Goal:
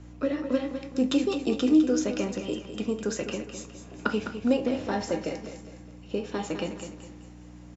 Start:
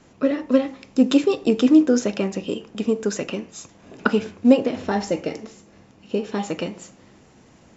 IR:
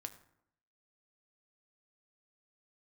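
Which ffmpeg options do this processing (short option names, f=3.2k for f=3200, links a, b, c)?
-filter_complex "[0:a]aeval=exprs='val(0)+0.0158*(sin(2*PI*60*n/s)+sin(2*PI*2*60*n/s)/2+sin(2*PI*3*60*n/s)/3+sin(2*PI*4*60*n/s)/4+sin(2*PI*5*60*n/s)/5)':c=same,lowshelf=f=110:g=-5.5[a];[1:a]atrim=start_sample=2205,atrim=end_sample=3087[b];[a][b]afir=irnorm=-1:irlink=0,acrossover=split=160|3000[c][d][e];[d]acompressor=threshold=-28dB:ratio=1.5[f];[c][f][e]amix=inputs=3:normalize=0,aecho=1:1:206|412|618|824:0.335|0.127|0.0484|0.0184"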